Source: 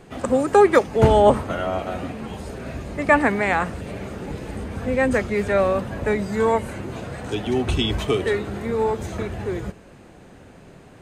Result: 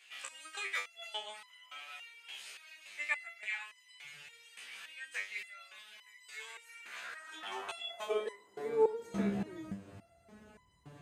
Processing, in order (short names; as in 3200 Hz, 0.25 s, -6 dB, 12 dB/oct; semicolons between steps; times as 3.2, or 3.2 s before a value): high-pass sweep 2600 Hz -> 66 Hz, 6.62–10.38; 4.03–4.44 band noise 100–180 Hz -66 dBFS; in parallel at -1 dB: compressor, threshold -37 dBFS, peak gain reduction 20.5 dB; on the sum: stepped resonator 3.5 Hz 67–1000 Hz; gain -3 dB